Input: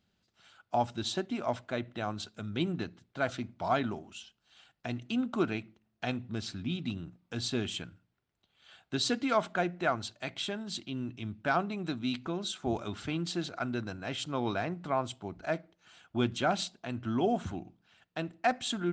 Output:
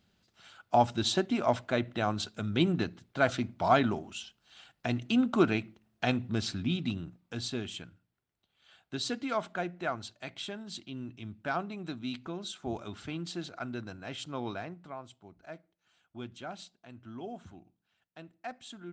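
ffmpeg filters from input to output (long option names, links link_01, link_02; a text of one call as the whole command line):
ffmpeg -i in.wav -af "volume=5dB,afade=type=out:start_time=6.42:duration=1.21:silence=0.354813,afade=type=out:start_time=14.41:duration=0.56:silence=0.354813" out.wav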